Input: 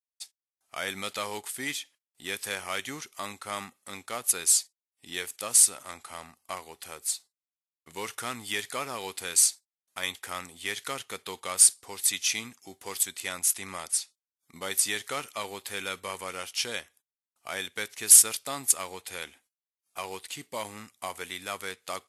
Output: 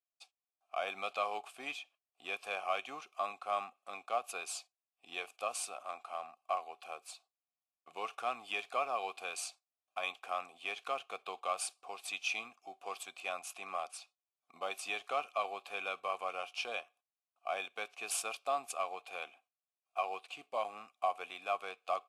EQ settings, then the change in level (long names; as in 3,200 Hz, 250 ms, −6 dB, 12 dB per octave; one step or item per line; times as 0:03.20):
formant filter a
high-pass filter 120 Hz 12 dB per octave
+8.5 dB